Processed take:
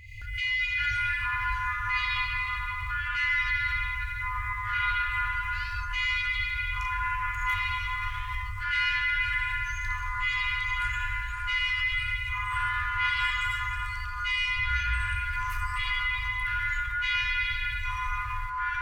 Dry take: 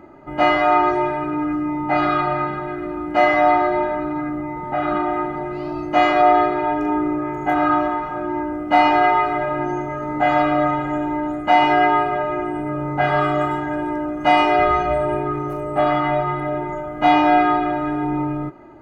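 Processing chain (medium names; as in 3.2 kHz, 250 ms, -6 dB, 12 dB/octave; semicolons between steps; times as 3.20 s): FFT band-reject 110–2000 Hz; reverse; compression 6:1, threshold -34 dBFS, peak gain reduction 13 dB; reverse; ever faster or slower copies 216 ms, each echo -6 st, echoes 2; swell ahead of each attack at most 48 dB/s; trim +7 dB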